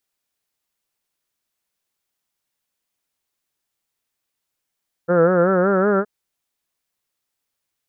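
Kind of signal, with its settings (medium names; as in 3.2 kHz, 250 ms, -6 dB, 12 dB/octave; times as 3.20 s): formant-synthesis vowel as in heard, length 0.97 s, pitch 168 Hz, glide +3.5 st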